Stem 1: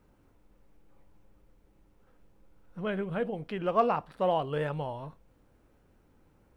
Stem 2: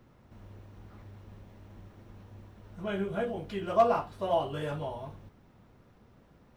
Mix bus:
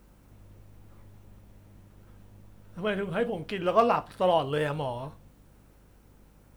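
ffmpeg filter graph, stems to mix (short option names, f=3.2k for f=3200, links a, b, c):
-filter_complex "[0:a]highshelf=f=3.7k:g=11.5,volume=2.5dB[a];[1:a]volume=-5.5dB[b];[a][b]amix=inputs=2:normalize=0,aeval=exprs='val(0)+0.00126*(sin(2*PI*50*n/s)+sin(2*PI*2*50*n/s)/2+sin(2*PI*3*50*n/s)/3+sin(2*PI*4*50*n/s)/4+sin(2*PI*5*50*n/s)/5)':c=same"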